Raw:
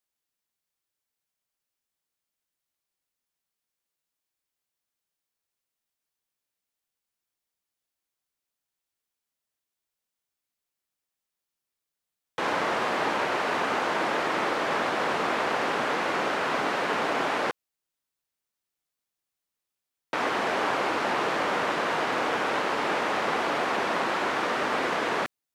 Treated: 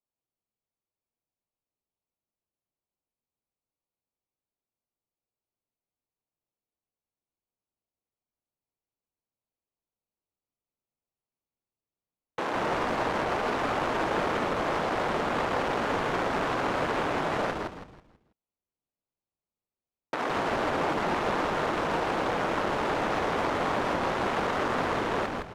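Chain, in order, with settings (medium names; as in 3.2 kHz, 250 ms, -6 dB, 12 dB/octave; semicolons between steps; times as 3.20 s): local Wiener filter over 25 samples; peak limiter -20 dBFS, peak gain reduction 6.5 dB; frequency-shifting echo 163 ms, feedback 35%, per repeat -140 Hz, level -3 dB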